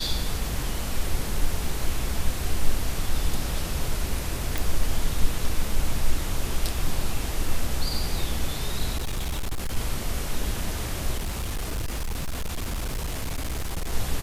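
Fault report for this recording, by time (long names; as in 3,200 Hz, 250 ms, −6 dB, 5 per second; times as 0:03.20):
0:04.58: click
0:08.97–0:09.77: clipping −24 dBFS
0:11.17–0:13.93: clipping −25 dBFS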